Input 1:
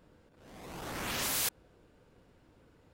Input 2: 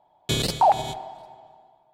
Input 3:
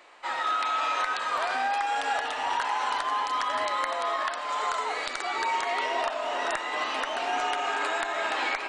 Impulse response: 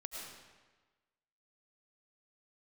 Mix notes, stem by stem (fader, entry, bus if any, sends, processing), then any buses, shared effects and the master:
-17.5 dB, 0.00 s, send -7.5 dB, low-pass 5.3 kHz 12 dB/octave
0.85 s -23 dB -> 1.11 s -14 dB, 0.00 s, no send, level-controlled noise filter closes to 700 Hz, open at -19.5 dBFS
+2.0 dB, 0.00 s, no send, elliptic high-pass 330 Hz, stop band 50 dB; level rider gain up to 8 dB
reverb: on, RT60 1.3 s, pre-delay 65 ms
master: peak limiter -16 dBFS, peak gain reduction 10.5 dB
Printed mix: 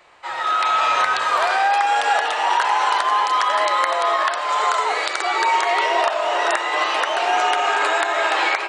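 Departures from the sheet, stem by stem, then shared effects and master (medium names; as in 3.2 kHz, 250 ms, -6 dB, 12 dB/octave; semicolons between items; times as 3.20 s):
stem 1 -17.5 dB -> -10.0 dB; stem 2 -23.0 dB -> -34.5 dB; master: missing peak limiter -16 dBFS, peak gain reduction 10.5 dB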